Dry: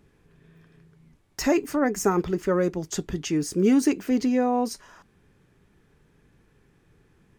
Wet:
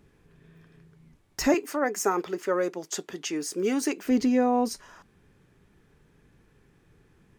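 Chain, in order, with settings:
0:01.54–0:04.06: high-pass filter 420 Hz 12 dB per octave

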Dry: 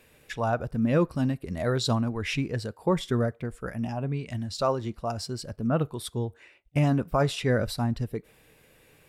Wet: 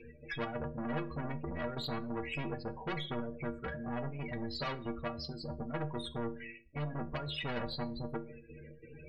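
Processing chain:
parametric band 690 Hz −3 dB 1.3 octaves
notch filter 6,100 Hz, Q 11
in parallel at −2 dB: compressor whose output falls as the input rises −29 dBFS, ratio −1
on the sum: gate pattern "x.xx.x.xx.xxxx" 136 BPM −12 dB
spectral peaks only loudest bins 16
soft clipping −25.5 dBFS, distortion −8 dB
high-frequency loss of the air 220 metres
stiff-string resonator 70 Hz, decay 0.39 s, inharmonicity 0.03
on a send at −15 dB: convolution reverb RT60 0.40 s, pre-delay 3 ms
on the sum: every bin compressed towards the loudest bin 2 to 1
level +1 dB

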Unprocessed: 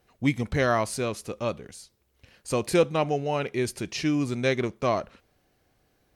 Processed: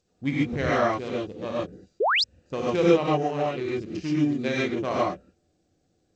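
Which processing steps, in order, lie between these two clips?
adaptive Wiener filter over 41 samples
low-shelf EQ 70 Hz −9.5 dB
reverb whose tail is shaped and stops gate 160 ms rising, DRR −5.5 dB
sound drawn into the spectrogram rise, 0:02.00–0:02.24, 360–5,600 Hz −17 dBFS
level −4.5 dB
G.722 64 kbit/s 16,000 Hz

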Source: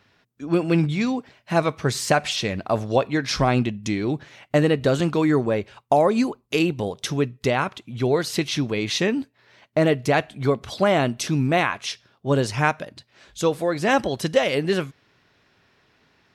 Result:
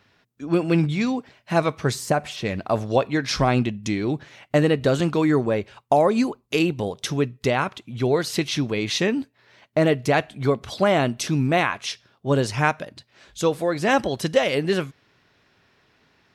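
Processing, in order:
0:01.94–0:02.45: parametric band 2,200 Hz → 6,400 Hz −10.5 dB 2.7 octaves

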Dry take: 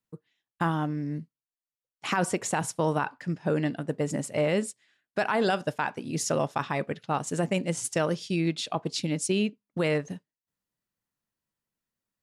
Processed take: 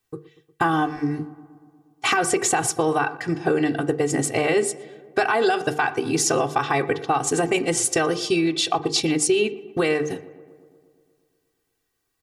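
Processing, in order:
mains-hum notches 50/100/150/200/250/300/350/400/450 Hz
comb filter 2.6 ms, depth 99%
in parallel at 0 dB: brickwall limiter −20 dBFS, peak gain reduction 8 dB
on the sum: downward compressor, threshold −21 dBFS, peak gain reduction 7 dB
feedback echo with a low-pass in the loop 119 ms, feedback 70%, low-pass 2,300 Hz, level −19 dB
on a send at −13 dB: convolution reverb RT60 0.50 s, pre-delay 3 ms
on the sum: level +4 dB

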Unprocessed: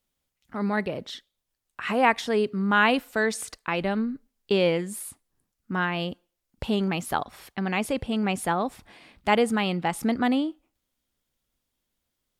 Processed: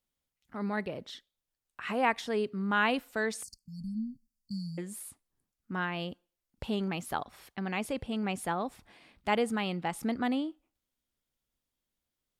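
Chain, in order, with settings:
0:03.43–0:04.78: linear-phase brick-wall band-stop 250–4,300 Hz
level −7 dB

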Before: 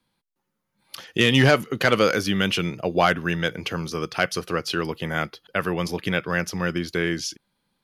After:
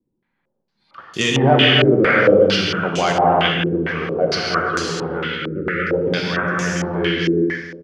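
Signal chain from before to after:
time-frequency box erased 0:04.90–0:05.93, 560–1,200 Hz
on a send: repeating echo 153 ms, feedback 53%, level −12 dB
on the sum: reverb whose tail is shaped and stops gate 480 ms flat, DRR −3.5 dB
low-pass on a step sequencer 4.4 Hz 360–7,000 Hz
level −2.5 dB

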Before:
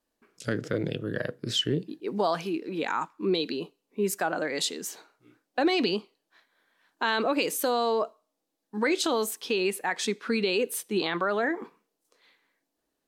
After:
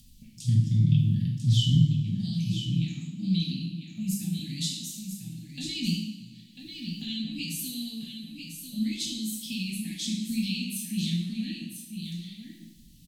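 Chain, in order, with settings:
inverse Chebyshev band-stop filter 390–1,500 Hz, stop band 50 dB
tilt shelving filter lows +7.5 dB, about 1,200 Hz
upward compression, threshold −39 dBFS
single-tap delay 995 ms −7.5 dB
coupled-rooms reverb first 0.74 s, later 3.1 s, from −21 dB, DRR −4.5 dB

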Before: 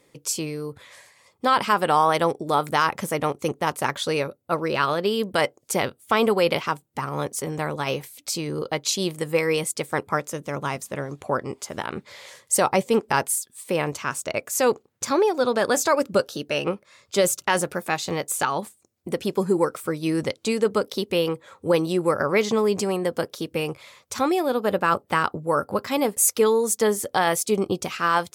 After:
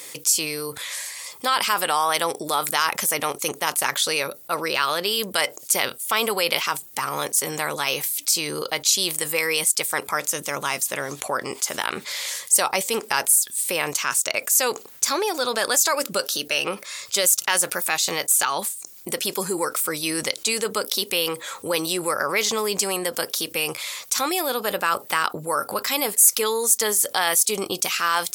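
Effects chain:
spectral tilt +4.5 dB per octave
envelope flattener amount 50%
level −10 dB

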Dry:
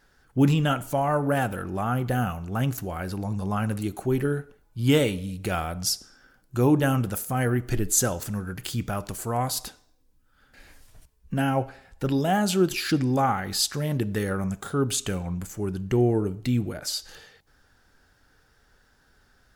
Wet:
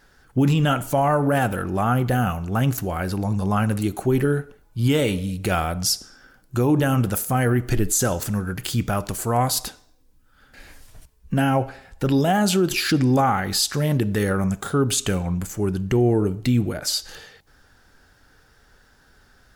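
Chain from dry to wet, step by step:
brickwall limiter −16.5 dBFS, peak gain reduction 9 dB
level +6 dB

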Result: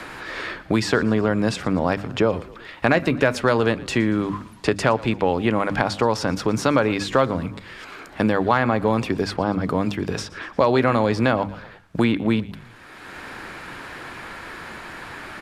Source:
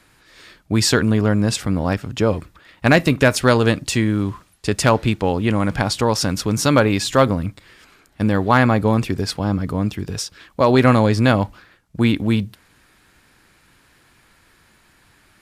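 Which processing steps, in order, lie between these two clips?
low-pass filter 1,700 Hz 6 dB per octave
low-shelf EQ 230 Hz −11.5 dB
mains-hum notches 50/100/150/200/250/300 Hz
in parallel at −2 dB: brickwall limiter −12 dBFS, peak gain reduction 8.5 dB
on the sum: echo with shifted repeats 116 ms, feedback 44%, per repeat −35 Hz, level −21.5 dB
multiband upward and downward compressor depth 70%
level −2 dB

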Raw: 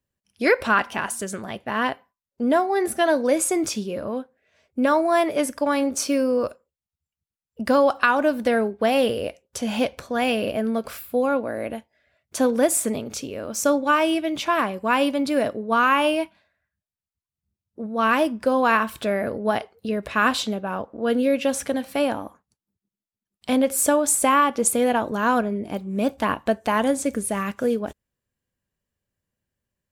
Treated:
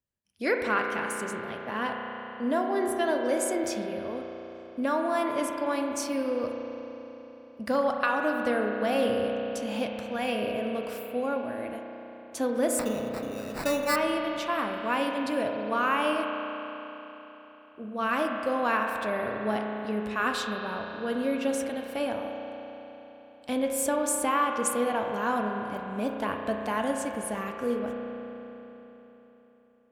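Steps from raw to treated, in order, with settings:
0:12.79–0:13.96: sample-rate reduction 3,200 Hz, jitter 0%
spring reverb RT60 3.8 s, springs 33 ms, chirp 35 ms, DRR 2 dB
level −8.5 dB

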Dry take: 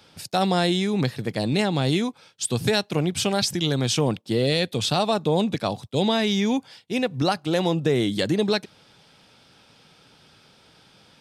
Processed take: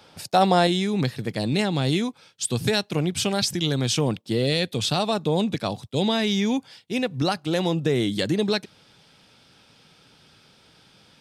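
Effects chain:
parametric band 750 Hz +5.5 dB 1.8 octaves, from 0:00.67 −2.5 dB

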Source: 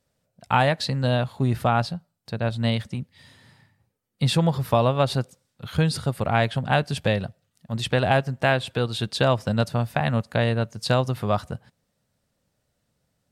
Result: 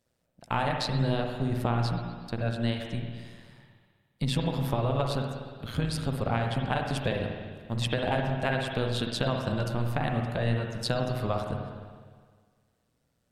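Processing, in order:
amplitude modulation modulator 120 Hz, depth 65%
downward compressor, threshold −25 dBFS, peak gain reduction 8.5 dB
convolution reverb RT60 1.7 s, pre-delay 51 ms, DRR 2 dB

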